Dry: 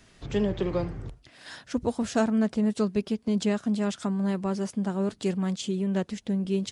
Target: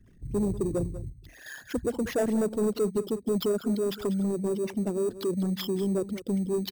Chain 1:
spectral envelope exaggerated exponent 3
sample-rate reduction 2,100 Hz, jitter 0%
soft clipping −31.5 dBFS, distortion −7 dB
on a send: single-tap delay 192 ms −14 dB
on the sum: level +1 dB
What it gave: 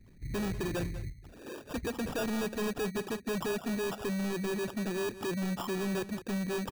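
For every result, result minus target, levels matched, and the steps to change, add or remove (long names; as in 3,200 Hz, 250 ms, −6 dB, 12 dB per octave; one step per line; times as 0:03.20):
sample-rate reduction: distortion +10 dB; soft clipping: distortion +10 dB
change: sample-rate reduction 8,400 Hz, jitter 0%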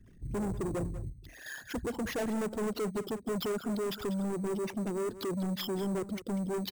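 soft clipping: distortion +10 dB
change: soft clipping −21 dBFS, distortion −17 dB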